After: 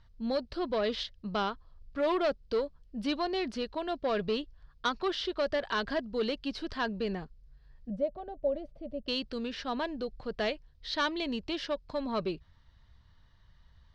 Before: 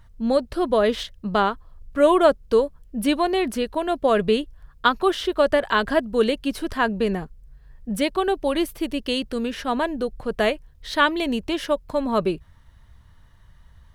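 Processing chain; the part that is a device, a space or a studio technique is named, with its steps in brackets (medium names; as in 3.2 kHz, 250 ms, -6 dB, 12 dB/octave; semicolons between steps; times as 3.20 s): overdriven synthesiser ladder filter (saturation -13.5 dBFS, distortion -15 dB; four-pole ladder low-pass 5.4 kHz, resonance 50%); 7.90–9.08 s: FFT filter 240 Hz 0 dB, 380 Hz -14 dB, 590 Hz +9 dB, 960 Hz -16 dB, 5.1 kHz -28 dB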